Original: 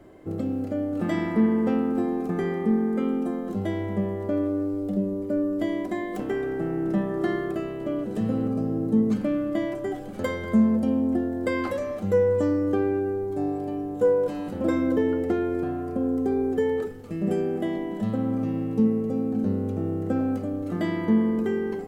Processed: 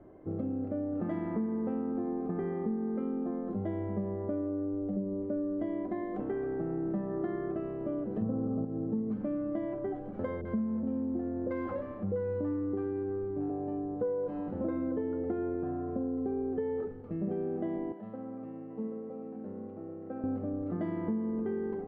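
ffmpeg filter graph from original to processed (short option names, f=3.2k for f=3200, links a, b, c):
-filter_complex "[0:a]asettb=1/sr,asplit=3[a][b][c];[a]atrim=end=8.224[d];[b]atrim=start=8.22:end=8.65,asetpts=PTS-STARTPTS,afade=t=in:d=0.004:c=qsin,afade=t=out:st=0.426:d=0.004:c=qsin,lowpass=f=1.4k:w=0.5412,lowpass=f=1.4k:w=1.3066,acontrast=82[e];[c]atrim=start=8.646[f];[d][e]acrossfade=d=0.004:c1=hsin:c2=qsin[g];[g][f]acrossfade=d=0.004:c1=qsin:c2=hsin,asettb=1/sr,asplit=3[h][i][j];[h]atrim=end=10.414[k];[i]atrim=start=10.41:end=13.5,asetpts=PTS-STARTPTS,afade=t=in:d=0.004:c=qsin,afade=t=out:st=3.086:d=0.004:c=qsin,adynamicsmooth=sensitivity=7.5:basefreq=1.3k,acrossover=split=630[l][m];[m]adelay=40[n];[l][n]amix=inputs=2:normalize=0,atrim=end_sample=136269[o];[j]atrim=start=13.496[p];[k][o]acrossfade=d=0.004:c1=hsin:c2=qsin[q];[q][p]acrossfade=d=0.004:c1=qsin:c2=hsin,asettb=1/sr,asplit=3[r][s][t];[r]atrim=end=17.924[u];[s]atrim=start=17.92:end=20.24,asetpts=PTS-STARTPTS,afade=t=in:d=0.004:c=qsin,afade=t=out:st=2.316:d=0.004:c=qsin,bandpass=f=1.4k:t=q:w=0.7,equalizer=f=1.2k:t=o:w=1.5:g=-6.5,aecho=1:1:784:0.335,atrim=end_sample=102312[v];[t]atrim=start=20.236[w];[u][v]acrossfade=d=0.004:c1=hsin:c2=qsin[x];[x][w]acrossfade=d=0.004:c1=qsin:c2=hsin,lowpass=1.2k,acompressor=threshold=-26dB:ratio=5,volume=-4dB"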